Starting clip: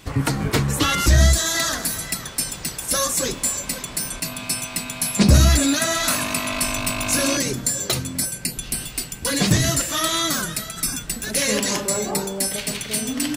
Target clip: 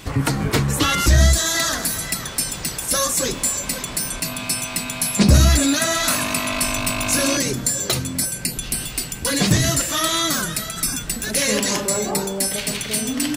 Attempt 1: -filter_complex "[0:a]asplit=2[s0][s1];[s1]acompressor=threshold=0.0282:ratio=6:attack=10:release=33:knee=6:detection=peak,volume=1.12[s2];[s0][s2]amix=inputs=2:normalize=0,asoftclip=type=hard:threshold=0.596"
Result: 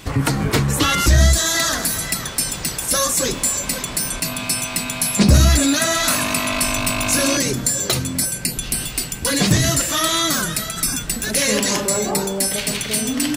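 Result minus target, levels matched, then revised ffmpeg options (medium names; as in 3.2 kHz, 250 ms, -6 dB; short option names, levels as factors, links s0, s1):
compression: peak gain reduction -7.5 dB
-filter_complex "[0:a]asplit=2[s0][s1];[s1]acompressor=threshold=0.01:ratio=6:attack=10:release=33:knee=6:detection=peak,volume=1.12[s2];[s0][s2]amix=inputs=2:normalize=0,asoftclip=type=hard:threshold=0.596"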